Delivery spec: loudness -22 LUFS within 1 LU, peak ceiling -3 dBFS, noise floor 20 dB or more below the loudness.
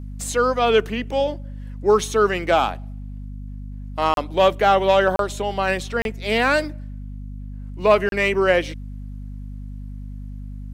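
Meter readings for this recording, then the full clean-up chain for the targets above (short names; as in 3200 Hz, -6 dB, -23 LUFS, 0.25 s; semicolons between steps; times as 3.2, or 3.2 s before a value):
dropouts 4; longest dropout 32 ms; hum 50 Hz; harmonics up to 250 Hz; hum level -31 dBFS; loudness -20.0 LUFS; peak -3.0 dBFS; loudness target -22.0 LUFS
-> interpolate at 4.14/5.16/6.02/8.09, 32 ms; de-hum 50 Hz, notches 5; gain -2 dB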